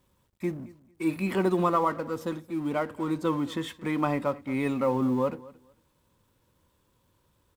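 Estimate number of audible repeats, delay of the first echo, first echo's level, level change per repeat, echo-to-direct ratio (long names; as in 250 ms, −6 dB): 2, 224 ms, −20.5 dB, −14.0 dB, −20.5 dB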